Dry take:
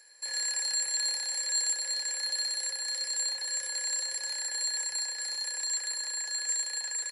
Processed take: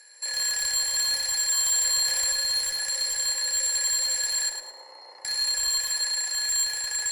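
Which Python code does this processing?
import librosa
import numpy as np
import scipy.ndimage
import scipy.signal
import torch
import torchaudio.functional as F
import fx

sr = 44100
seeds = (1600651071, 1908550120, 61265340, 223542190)

p1 = fx.reverse_delay_fb(x, sr, ms=132, feedback_pct=80, wet_db=-8.5)
p2 = scipy.signal.sosfilt(scipy.signal.butter(2, 380.0, 'highpass', fs=sr, output='sos'), p1)
p3 = fx.level_steps(p2, sr, step_db=23)
p4 = p2 + (p3 * 10.0 ** (2.5 / 20.0))
p5 = fx.savgol(p4, sr, points=65, at=(4.49, 5.25))
p6 = fx.clip_asym(p5, sr, top_db=-28.0, bottom_db=-22.5)
p7 = p6 + fx.echo_feedback(p6, sr, ms=108, feedback_pct=31, wet_db=-6.5, dry=0)
p8 = fx.env_flatten(p7, sr, amount_pct=50, at=(1.65, 2.32))
y = p8 * 10.0 ** (2.5 / 20.0)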